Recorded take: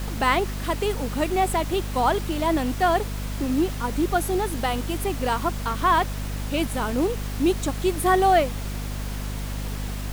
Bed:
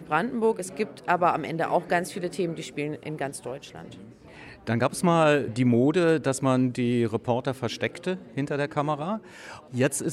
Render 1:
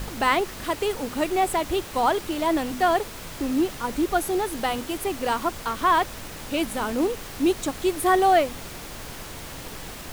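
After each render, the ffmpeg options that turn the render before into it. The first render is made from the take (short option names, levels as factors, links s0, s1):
-af "bandreject=f=50:t=h:w=4,bandreject=f=100:t=h:w=4,bandreject=f=150:t=h:w=4,bandreject=f=200:t=h:w=4,bandreject=f=250:t=h:w=4"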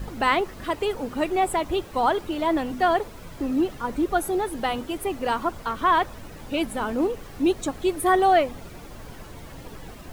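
-af "afftdn=nr=11:nf=-38"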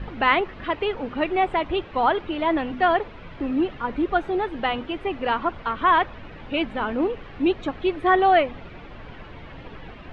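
-af "lowpass=f=2900:w=0.5412,lowpass=f=2900:w=1.3066,highshelf=f=2300:g=10"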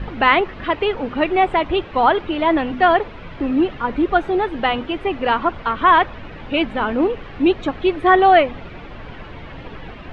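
-af "volume=1.88,alimiter=limit=0.891:level=0:latency=1"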